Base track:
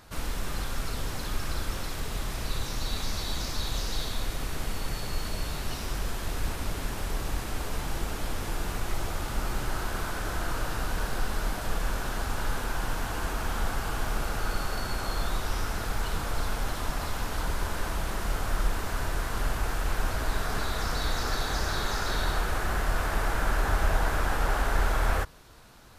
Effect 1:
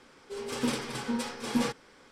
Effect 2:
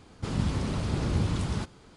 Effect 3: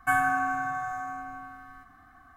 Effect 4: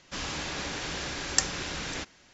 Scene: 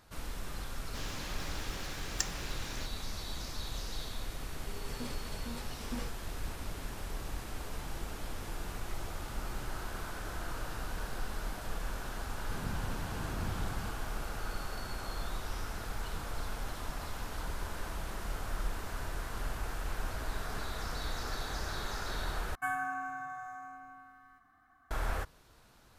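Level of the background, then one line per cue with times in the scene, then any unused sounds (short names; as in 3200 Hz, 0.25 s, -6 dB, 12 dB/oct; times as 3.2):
base track -8.5 dB
0.82 add 4 -9.5 dB + block floating point 5-bit
4.37 add 1 -13.5 dB
12.27 add 2 -12.5 dB
22.55 replace with 3 -10 dB + low shelf 230 Hz -5.5 dB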